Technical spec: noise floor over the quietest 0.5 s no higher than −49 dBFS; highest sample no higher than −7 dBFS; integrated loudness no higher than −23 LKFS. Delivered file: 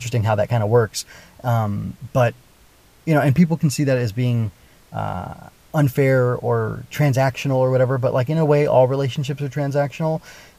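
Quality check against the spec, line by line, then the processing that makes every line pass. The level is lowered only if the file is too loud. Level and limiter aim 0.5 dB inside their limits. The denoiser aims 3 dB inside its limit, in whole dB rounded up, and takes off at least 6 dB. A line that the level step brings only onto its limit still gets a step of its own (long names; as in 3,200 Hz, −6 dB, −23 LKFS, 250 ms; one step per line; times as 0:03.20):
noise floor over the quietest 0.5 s −52 dBFS: in spec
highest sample −3.0 dBFS: out of spec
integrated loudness −20.0 LKFS: out of spec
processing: level −3.5 dB
brickwall limiter −7.5 dBFS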